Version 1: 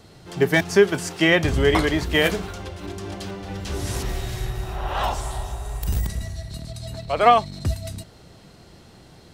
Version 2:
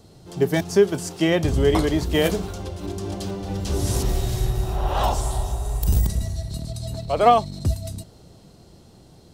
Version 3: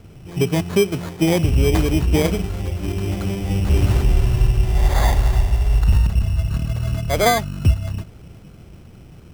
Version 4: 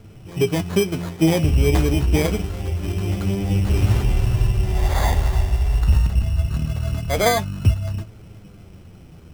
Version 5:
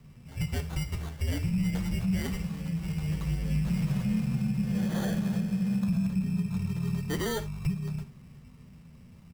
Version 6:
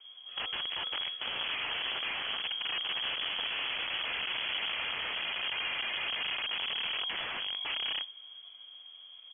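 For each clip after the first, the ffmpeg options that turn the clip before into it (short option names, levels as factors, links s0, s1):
-af "equalizer=f=1900:w=0.8:g=-10.5,dynaudnorm=f=240:g=17:m=2"
-af "lowshelf=f=220:g=11,alimiter=limit=0.473:level=0:latency=1:release=469,acrusher=samples=16:mix=1:aa=0.000001"
-af "flanger=delay=9.2:depth=4.8:regen=49:speed=0.25:shape=sinusoidal,volume=1.41"
-af "afreqshift=-250,alimiter=limit=0.251:level=0:latency=1:release=157,aecho=1:1:53|76:0.158|0.133,volume=0.376"
-af "aeval=exprs='(mod(28.2*val(0)+1,2)-1)/28.2':c=same,lowpass=f=2900:t=q:w=0.5098,lowpass=f=2900:t=q:w=0.6013,lowpass=f=2900:t=q:w=0.9,lowpass=f=2900:t=q:w=2.563,afreqshift=-3400"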